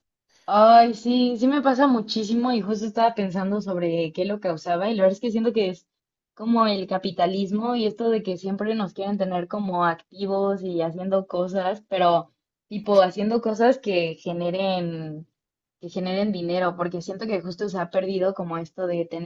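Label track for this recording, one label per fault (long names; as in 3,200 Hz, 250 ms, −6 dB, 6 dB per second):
12.840000	12.840000	drop-out 2.9 ms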